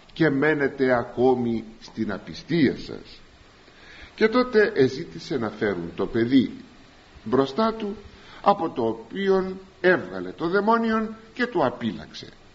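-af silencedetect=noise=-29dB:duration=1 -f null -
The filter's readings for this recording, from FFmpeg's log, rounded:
silence_start: 2.97
silence_end: 4.18 | silence_duration: 1.21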